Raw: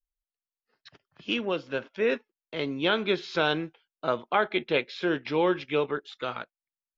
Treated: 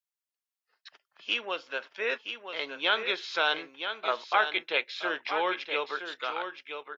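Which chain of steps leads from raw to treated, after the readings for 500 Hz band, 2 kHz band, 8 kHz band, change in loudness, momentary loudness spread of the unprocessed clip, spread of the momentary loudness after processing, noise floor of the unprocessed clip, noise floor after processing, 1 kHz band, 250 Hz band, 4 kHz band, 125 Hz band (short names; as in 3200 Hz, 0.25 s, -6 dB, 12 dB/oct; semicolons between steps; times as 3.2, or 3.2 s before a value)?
-6.5 dB, +2.0 dB, n/a, -1.5 dB, 9 LU, 9 LU, under -85 dBFS, under -85 dBFS, +0.5 dB, -13.5 dB, +2.0 dB, under -20 dB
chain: HPF 780 Hz 12 dB/oct; on a send: echo 0.971 s -8 dB; on the sum: gain +1.5 dB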